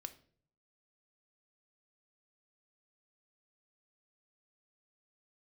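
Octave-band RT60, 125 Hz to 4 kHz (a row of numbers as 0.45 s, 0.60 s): 0.90 s, 0.70 s, 0.60 s, 0.40 s, 0.40 s, 0.40 s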